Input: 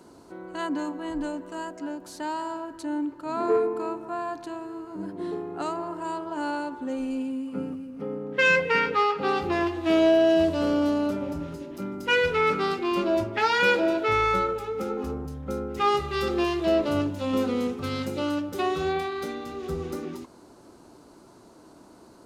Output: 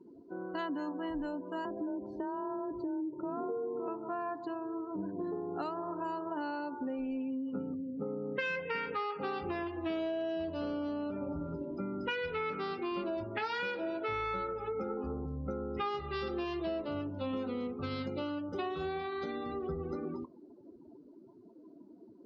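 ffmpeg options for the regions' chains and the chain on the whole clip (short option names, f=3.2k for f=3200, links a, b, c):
-filter_complex "[0:a]asettb=1/sr,asplit=3[a][b][c];[a]atrim=end=1.654[d];[b]atrim=start=1.65:end=3.88,asetpts=PTS-STARTPTS,afade=t=in:d=0.004:c=qsin,afade=t=out:st=2.226:d=0.004:c=qsin,tiltshelf=f=910:g=8,afreqshift=22,acompressor=threshold=-30dB:ratio=2.5:attack=3.2:release=140:knee=1:detection=peak[e];[c]atrim=start=3.876[f];[d][e]acrossfade=d=0.004:c1=hsin:c2=qsin[g];[g][f]acrossfade=d=0.004:c1=qsin:c2=hsin,afftdn=nr=28:nf=-43,lowpass=f=5.5k:w=0.5412,lowpass=f=5.5k:w=1.3066,acompressor=threshold=-34dB:ratio=6"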